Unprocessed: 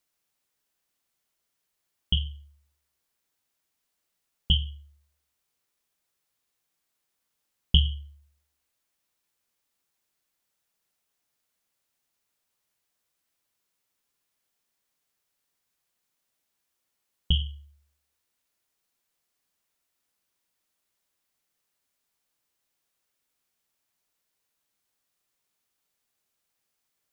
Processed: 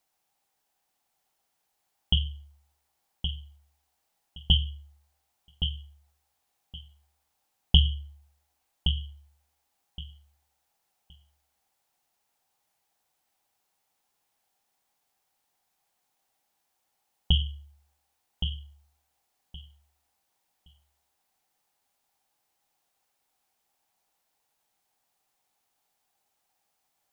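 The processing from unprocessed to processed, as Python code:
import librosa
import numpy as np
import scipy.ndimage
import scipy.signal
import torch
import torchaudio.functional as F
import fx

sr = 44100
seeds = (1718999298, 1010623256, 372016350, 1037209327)

p1 = fx.peak_eq(x, sr, hz=790.0, db=14.0, octaves=0.43)
p2 = p1 + fx.echo_feedback(p1, sr, ms=1119, feedback_pct=19, wet_db=-7.5, dry=0)
y = p2 * librosa.db_to_amplitude(1.0)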